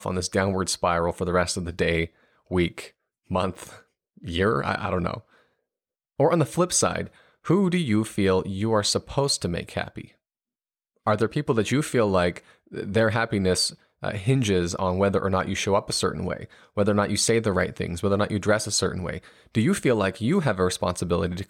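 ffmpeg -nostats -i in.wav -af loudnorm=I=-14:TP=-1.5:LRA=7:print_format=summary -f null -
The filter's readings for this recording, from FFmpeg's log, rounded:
Input Integrated:    -24.5 LUFS
Input True Peak:      -9.4 dBTP
Input LRA:             3.6 LU
Input Threshold:     -35.0 LUFS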